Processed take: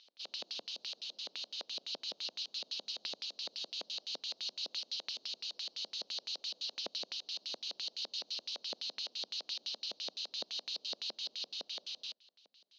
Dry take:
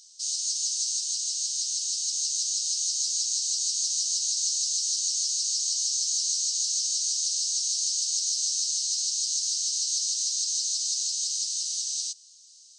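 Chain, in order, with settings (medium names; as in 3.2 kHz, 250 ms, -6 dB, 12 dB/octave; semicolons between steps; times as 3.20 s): LFO low-pass square 5.9 Hz 580–2700 Hz; Chebyshev band-pass 210–4000 Hz, order 3; trim +3.5 dB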